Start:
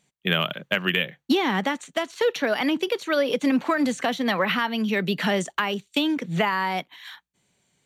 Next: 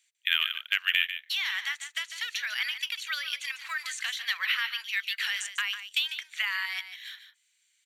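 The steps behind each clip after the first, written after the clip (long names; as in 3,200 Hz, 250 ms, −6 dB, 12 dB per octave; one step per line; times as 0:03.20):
inverse Chebyshev high-pass filter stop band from 290 Hz, stop band 80 dB
single-tap delay 148 ms −10.5 dB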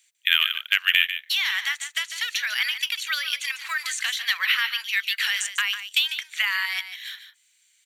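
high-shelf EQ 7,100 Hz +5 dB
level +5.5 dB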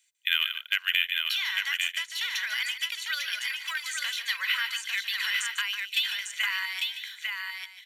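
comb filter 2 ms, depth 38%
on a send: single-tap delay 849 ms −4 dB
on the sum: level −6.5 dB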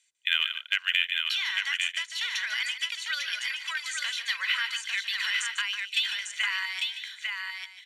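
low-pass filter 9,900 Hz 24 dB per octave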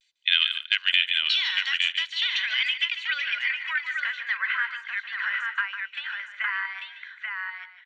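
pitch vibrato 0.48 Hz 39 cents
low-pass filter sweep 4,200 Hz → 1,500 Hz, 0:01.60–0:04.63
far-end echo of a speakerphone 200 ms, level −24 dB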